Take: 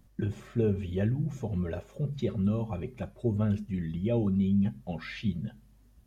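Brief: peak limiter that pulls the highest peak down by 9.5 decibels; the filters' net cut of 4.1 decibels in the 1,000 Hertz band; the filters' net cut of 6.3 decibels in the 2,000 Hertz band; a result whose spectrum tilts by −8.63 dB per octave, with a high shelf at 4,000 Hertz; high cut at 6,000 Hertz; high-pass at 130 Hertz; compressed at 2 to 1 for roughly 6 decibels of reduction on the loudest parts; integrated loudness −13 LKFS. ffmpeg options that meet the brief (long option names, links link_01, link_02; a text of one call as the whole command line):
ffmpeg -i in.wav -af "highpass=130,lowpass=6000,equalizer=frequency=1000:width_type=o:gain=-4.5,equalizer=frequency=2000:width_type=o:gain=-5.5,highshelf=frequency=4000:gain=-4,acompressor=threshold=-35dB:ratio=2,volume=27.5dB,alimiter=limit=-4dB:level=0:latency=1" out.wav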